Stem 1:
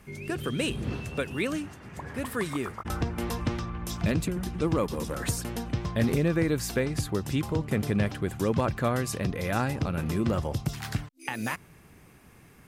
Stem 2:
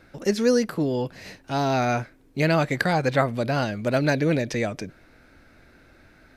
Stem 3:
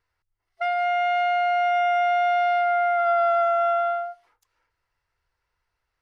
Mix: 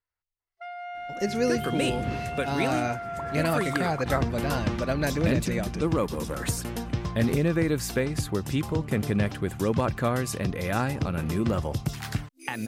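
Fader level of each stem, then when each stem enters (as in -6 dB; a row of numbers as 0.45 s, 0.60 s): +1.0 dB, -5.5 dB, -14.5 dB; 1.20 s, 0.95 s, 0.00 s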